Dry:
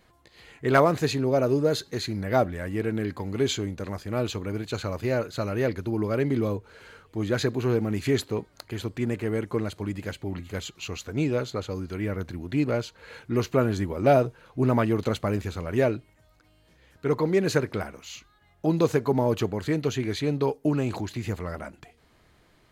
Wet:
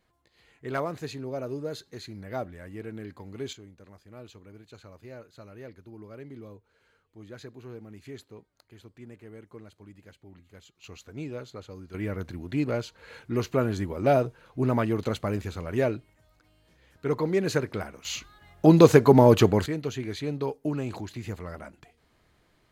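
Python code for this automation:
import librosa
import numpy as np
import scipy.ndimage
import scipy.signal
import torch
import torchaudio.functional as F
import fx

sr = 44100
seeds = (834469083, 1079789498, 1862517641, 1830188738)

y = fx.gain(x, sr, db=fx.steps((0.0, -11.0), (3.53, -18.5), (10.84, -11.0), (11.94, -2.5), (18.05, 7.5), (19.66, -5.0)))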